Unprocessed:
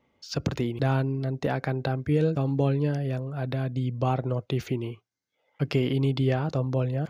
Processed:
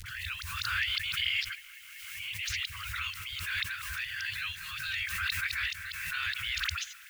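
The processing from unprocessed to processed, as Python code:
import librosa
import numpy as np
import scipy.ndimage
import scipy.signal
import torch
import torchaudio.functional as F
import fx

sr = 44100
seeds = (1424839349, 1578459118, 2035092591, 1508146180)

p1 = x[::-1].copy()
p2 = scipy.signal.sosfilt(scipy.signal.butter(2, 4500.0, 'lowpass', fs=sr, output='sos'), p1)
p3 = fx.spec_gate(p2, sr, threshold_db=-15, keep='weak')
p4 = fx.low_shelf(p3, sr, hz=62.0, db=-10.5)
p5 = fx.rider(p4, sr, range_db=10, speed_s=0.5)
p6 = p4 + (p5 * 10.0 ** (3.0 / 20.0))
p7 = fx.quant_dither(p6, sr, seeds[0], bits=10, dither='triangular')
p8 = fx.dispersion(p7, sr, late='highs', ms=59.0, hz=1100.0)
p9 = fx.dmg_crackle(p8, sr, seeds[1], per_s=270.0, level_db=-60.0)
p10 = scipy.signal.sosfilt(scipy.signal.cheby2(4, 50, [210.0, 830.0], 'bandstop', fs=sr, output='sos'), p9)
p11 = fx.echo_wet_bandpass(p10, sr, ms=191, feedback_pct=79, hz=1200.0, wet_db=-17.0)
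p12 = fx.pre_swell(p11, sr, db_per_s=29.0)
y = p12 * 10.0 ** (3.5 / 20.0)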